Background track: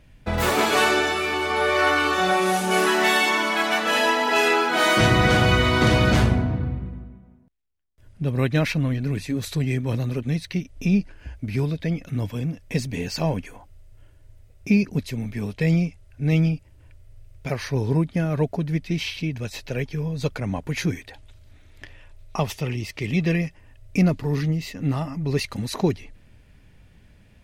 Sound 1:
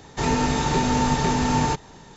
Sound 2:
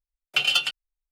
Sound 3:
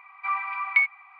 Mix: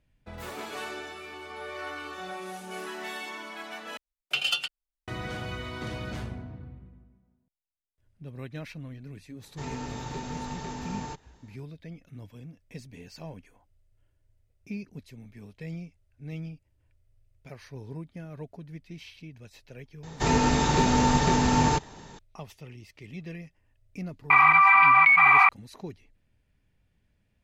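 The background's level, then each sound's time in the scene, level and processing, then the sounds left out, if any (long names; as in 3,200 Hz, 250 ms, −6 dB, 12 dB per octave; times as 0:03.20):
background track −18 dB
0:03.97: overwrite with 2 −5.5 dB
0:09.40: mix in 1 −15.5 dB
0:20.03: mix in 1 −1 dB
0:24.30: mix in 3 −1 dB + envelope flattener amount 100%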